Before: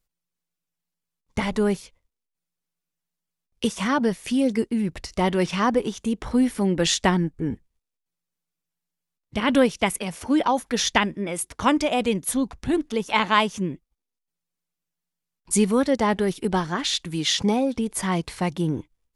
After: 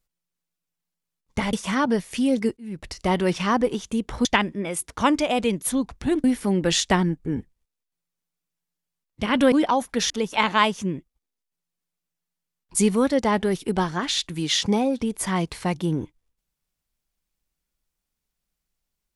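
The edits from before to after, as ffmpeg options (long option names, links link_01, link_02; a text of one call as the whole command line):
ffmpeg -i in.wav -filter_complex "[0:a]asplit=7[link_01][link_02][link_03][link_04][link_05][link_06][link_07];[link_01]atrim=end=1.532[link_08];[link_02]atrim=start=3.658:end=4.7,asetpts=PTS-STARTPTS,afade=type=out:start_time=1.038:duration=0.004:curve=hsin[link_09];[link_03]atrim=start=4.7:end=6.382,asetpts=PTS-STARTPTS,afade=type=in:duration=0.36[link_10];[link_04]atrim=start=10.868:end=12.862[link_11];[link_05]atrim=start=6.378:end=9.662[link_12];[link_06]atrim=start=10.288:end=10.872[link_13];[link_07]atrim=start=12.858[link_14];[link_09][link_10]concat=n=2:v=0:a=1[link_15];[link_08][link_15]acrossfade=duration=0.004:curve1=hsin:curve2=hsin[link_16];[link_16][link_11]acrossfade=duration=0.004:curve1=hsin:curve2=hsin[link_17];[link_17][link_12]acrossfade=duration=0.004:curve1=hsin:curve2=hsin[link_18];[link_18][link_13]acrossfade=duration=0.004:curve1=hsin:curve2=hsin[link_19];[link_19][link_14]acrossfade=duration=0.004:curve1=hsin:curve2=hsin" out.wav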